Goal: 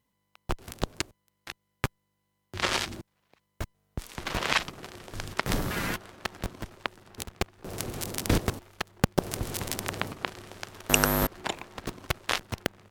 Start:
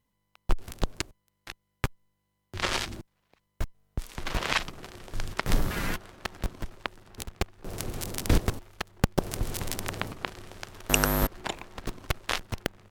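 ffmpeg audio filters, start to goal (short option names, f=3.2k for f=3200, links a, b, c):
-af "highpass=f=89:p=1,volume=1.5dB"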